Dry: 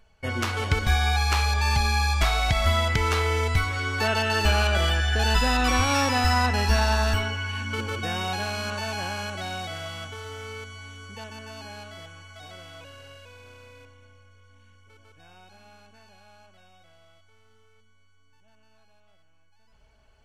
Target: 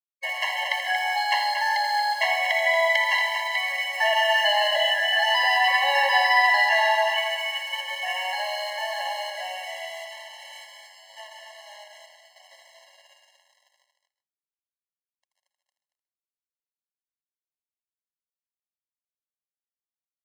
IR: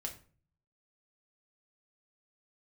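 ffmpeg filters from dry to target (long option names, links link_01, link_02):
-filter_complex "[0:a]lowpass=frequency=2300:width_type=q:width=1.8,crystalizer=i=3:c=0,aeval=exprs='sgn(val(0))*max(abs(val(0))-0.0119,0)':channel_layout=same,aecho=1:1:81.63|230.3:0.355|0.398,asplit=2[link_01][link_02];[1:a]atrim=start_sample=2205,asetrate=83790,aresample=44100,adelay=131[link_03];[link_02][link_03]afir=irnorm=-1:irlink=0,volume=-5dB[link_04];[link_01][link_04]amix=inputs=2:normalize=0,afftfilt=real='re*eq(mod(floor(b*sr/1024/550),2),1)':imag='im*eq(mod(floor(b*sr/1024/550),2),1)':win_size=1024:overlap=0.75,volume=3dB"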